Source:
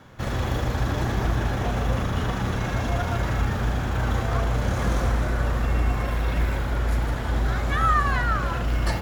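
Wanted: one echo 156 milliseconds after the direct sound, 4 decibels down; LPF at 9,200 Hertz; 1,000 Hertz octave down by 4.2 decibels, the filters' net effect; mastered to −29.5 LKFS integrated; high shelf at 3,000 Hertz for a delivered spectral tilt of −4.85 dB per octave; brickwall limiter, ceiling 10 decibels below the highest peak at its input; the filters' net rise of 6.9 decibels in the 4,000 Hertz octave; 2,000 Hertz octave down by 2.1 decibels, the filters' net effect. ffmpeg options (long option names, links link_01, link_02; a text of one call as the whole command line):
ffmpeg -i in.wav -af "lowpass=9200,equalizer=frequency=1000:width_type=o:gain=-6,equalizer=frequency=2000:width_type=o:gain=-4,highshelf=frequency=3000:gain=8,equalizer=frequency=4000:width_type=o:gain=4.5,alimiter=limit=-21dB:level=0:latency=1,aecho=1:1:156:0.631" out.wav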